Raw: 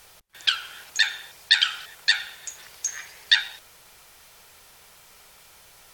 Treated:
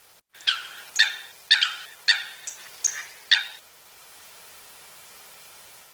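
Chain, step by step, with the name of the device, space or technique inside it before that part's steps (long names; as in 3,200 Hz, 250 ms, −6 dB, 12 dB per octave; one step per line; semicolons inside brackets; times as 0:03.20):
video call (high-pass filter 170 Hz 6 dB per octave; automatic gain control gain up to 5.5 dB; level −1 dB; Opus 16 kbit/s 48,000 Hz)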